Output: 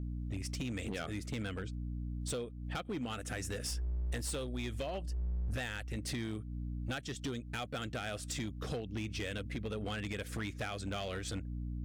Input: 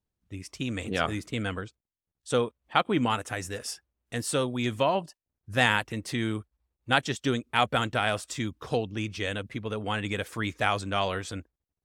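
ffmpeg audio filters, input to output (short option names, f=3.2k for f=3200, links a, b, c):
-filter_complex "[0:a]aeval=exprs='val(0)+0.01*(sin(2*PI*60*n/s)+sin(2*PI*2*60*n/s)/2+sin(2*PI*3*60*n/s)/3+sin(2*PI*4*60*n/s)/4+sin(2*PI*5*60*n/s)/5)':c=same,equalizer=f=970:w=3.3:g=-14,acompressor=threshold=-37dB:ratio=10,asplit=3[a][b][c];[a]afade=t=out:st=3.69:d=0.02[d];[b]asubboost=boost=6:cutoff=63,afade=t=in:st=3.69:d=0.02,afade=t=out:st=5.96:d=0.02[e];[c]afade=t=in:st=5.96:d=0.02[f];[d][e][f]amix=inputs=3:normalize=0,volume=35.5dB,asoftclip=hard,volume=-35.5dB,volume=3dB"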